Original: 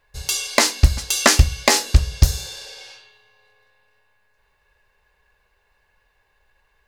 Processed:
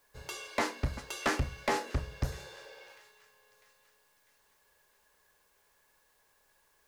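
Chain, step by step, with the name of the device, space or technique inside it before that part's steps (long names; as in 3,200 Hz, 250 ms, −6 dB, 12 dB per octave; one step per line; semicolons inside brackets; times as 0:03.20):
three-way crossover with the lows and the highs turned down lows −14 dB, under 200 Hz, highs −19 dB, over 2,000 Hz
notch filter 760 Hz, Q 15
open-reel tape (soft clipping −19 dBFS, distortion −6 dB; parametric band 130 Hz +4 dB; white noise bed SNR 33 dB)
delay with a high-pass on its return 648 ms, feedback 49%, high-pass 1,900 Hz, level −19.5 dB
level −4.5 dB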